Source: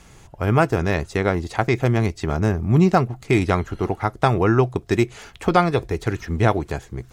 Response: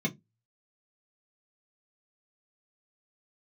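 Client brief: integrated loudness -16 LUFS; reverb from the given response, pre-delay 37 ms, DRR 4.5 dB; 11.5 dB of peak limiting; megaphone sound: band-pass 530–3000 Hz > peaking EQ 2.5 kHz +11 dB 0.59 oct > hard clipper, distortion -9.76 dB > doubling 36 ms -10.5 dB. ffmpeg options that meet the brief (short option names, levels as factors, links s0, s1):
-filter_complex "[0:a]alimiter=limit=0.2:level=0:latency=1,asplit=2[s0][s1];[1:a]atrim=start_sample=2205,adelay=37[s2];[s1][s2]afir=irnorm=-1:irlink=0,volume=0.282[s3];[s0][s3]amix=inputs=2:normalize=0,highpass=530,lowpass=3000,equalizer=f=2500:t=o:w=0.59:g=11,asoftclip=type=hard:threshold=0.0668,asplit=2[s4][s5];[s5]adelay=36,volume=0.299[s6];[s4][s6]amix=inputs=2:normalize=0,volume=4.73"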